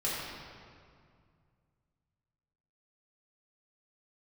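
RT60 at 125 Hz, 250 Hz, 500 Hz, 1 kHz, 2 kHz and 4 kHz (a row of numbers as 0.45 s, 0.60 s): 3.2 s, 2.6 s, 2.2 s, 2.1 s, 1.8 s, 1.5 s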